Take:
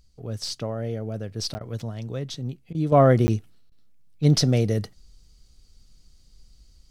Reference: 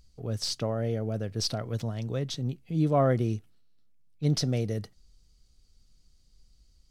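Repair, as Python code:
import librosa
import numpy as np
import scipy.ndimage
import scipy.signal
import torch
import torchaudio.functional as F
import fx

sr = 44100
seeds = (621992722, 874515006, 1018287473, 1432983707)

y = fx.fix_interpolate(x, sr, at_s=(1.54, 3.27), length_ms=10.0)
y = fx.fix_interpolate(y, sr, at_s=(1.59, 2.73, 3.7), length_ms=16.0)
y = fx.gain(y, sr, db=fx.steps((0.0, 0.0), (2.92, -7.5)))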